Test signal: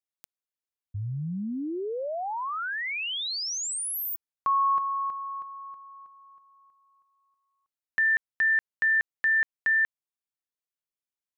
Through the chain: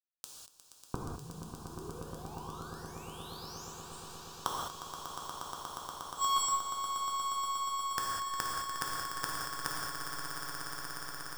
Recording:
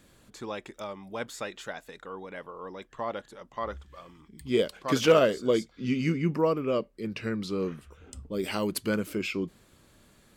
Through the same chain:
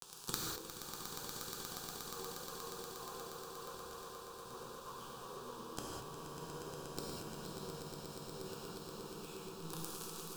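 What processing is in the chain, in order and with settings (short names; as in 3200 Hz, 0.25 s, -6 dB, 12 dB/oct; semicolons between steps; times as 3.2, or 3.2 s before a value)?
one-sided fold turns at -24 dBFS; treble ducked by the level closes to 1700 Hz, closed at -26 dBFS; Bessel low-pass 7700 Hz, order 8; low shelf 440 Hz -6.5 dB; fuzz box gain 52 dB, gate -54 dBFS; added harmonics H 4 -14 dB, 7 -7 dB, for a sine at -9.5 dBFS; fixed phaser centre 410 Hz, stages 8; resonator 81 Hz, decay 0.45 s, harmonics all, mix 60%; flipped gate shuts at -23 dBFS, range -40 dB; on a send: swelling echo 0.119 s, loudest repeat 8, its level -10 dB; on the sum: non-linear reverb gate 0.23 s flat, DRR -2.5 dB; gain +3.5 dB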